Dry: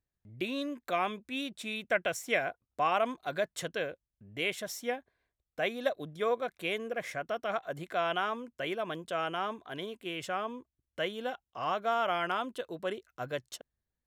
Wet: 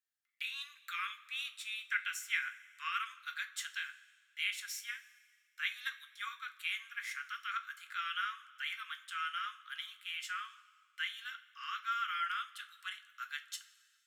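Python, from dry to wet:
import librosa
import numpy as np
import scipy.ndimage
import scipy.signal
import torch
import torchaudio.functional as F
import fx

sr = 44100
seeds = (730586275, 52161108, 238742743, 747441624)

p1 = scipy.signal.sosfilt(scipy.signal.butter(16, 1200.0, 'highpass', fs=sr, output='sos'), x)
p2 = fx.rider(p1, sr, range_db=4, speed_s=0.5)
p3 = p1 + F.gain(torch.from_numpy(p2), -2.5).numpy()
p4 = fx.rev_double_slope(p3, sr, seeds[0], early_s=0.24, late_s=1.8, knee_db=-18, drr_db=5.0)
y = F.gain(torch.from_numpy(p4), -7.0).numpy()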